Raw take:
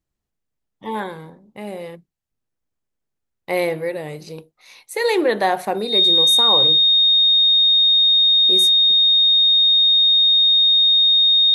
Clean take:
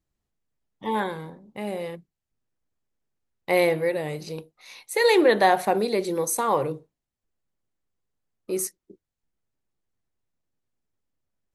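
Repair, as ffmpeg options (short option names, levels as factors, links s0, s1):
-af "bandreject=f=3700:w=30"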